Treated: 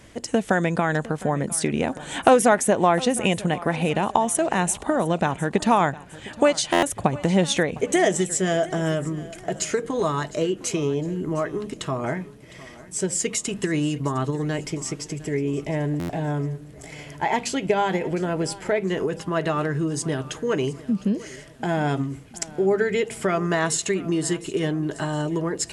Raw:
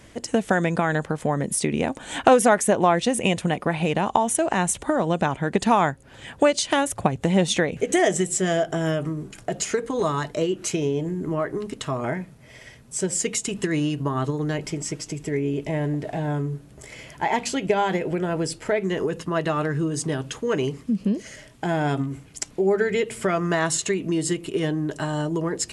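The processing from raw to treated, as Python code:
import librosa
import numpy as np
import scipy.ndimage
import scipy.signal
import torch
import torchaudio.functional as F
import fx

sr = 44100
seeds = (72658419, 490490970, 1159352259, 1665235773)

p1 = x + fx.echo_feedback(x, sr, ms=708, feedback_pct=42, wet_db=-19.0, dry=0)
y = fx.buffer_glitch(p1, sr, at_s=(6.72, 15.99), block=512, repeats=8)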